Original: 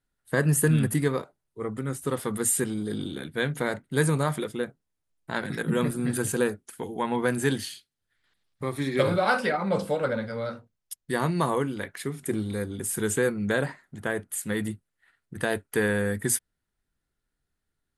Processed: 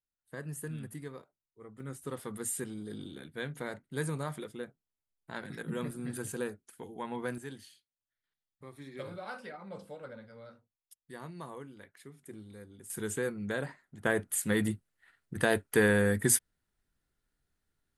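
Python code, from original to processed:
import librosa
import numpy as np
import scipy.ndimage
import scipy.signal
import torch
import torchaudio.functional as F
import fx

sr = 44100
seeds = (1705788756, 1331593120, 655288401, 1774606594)

y = fx.gain(x, sr, db=fx.steps((0.0, -18.5), (1.8, -11.0), (7.38, -19.0), (12.9, -9.0), (14.05, 0.0)))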